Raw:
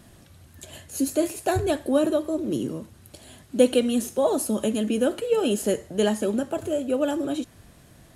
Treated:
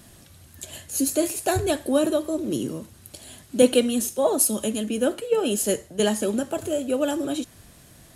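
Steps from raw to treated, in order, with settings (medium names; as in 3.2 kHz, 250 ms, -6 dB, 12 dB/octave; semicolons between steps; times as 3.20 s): treble shelf 3.3 kHz +7.5 dB; 3.62–6.00 s: three bands expanded up and down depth 70%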